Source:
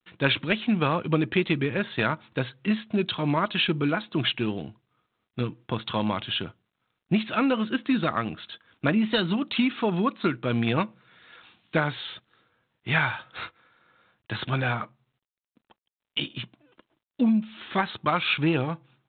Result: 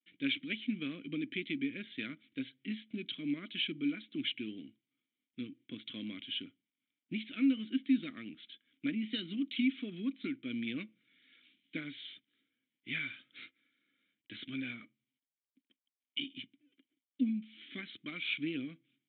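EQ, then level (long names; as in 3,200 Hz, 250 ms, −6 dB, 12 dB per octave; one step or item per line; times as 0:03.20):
formant filter i
high-shelf EQ 3,700 Hz +10 dB
−3.0 dB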